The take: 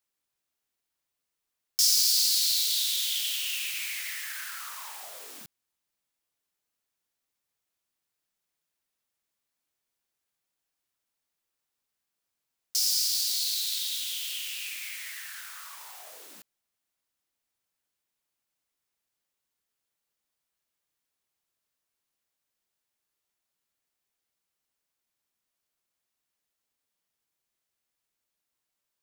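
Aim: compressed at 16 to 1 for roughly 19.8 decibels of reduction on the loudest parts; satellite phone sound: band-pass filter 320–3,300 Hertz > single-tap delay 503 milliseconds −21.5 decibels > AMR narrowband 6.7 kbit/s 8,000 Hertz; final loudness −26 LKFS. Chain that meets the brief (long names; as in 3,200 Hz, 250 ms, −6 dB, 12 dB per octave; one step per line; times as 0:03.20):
downward compressor 16 to 1, threshold −39 dBFS
band-pass filter 320–3,300 Hz
single-tap delay 503 ms −21.5 dB
level +25 dB
AMR narrowband 6.7 kbit/s 8,000 Hz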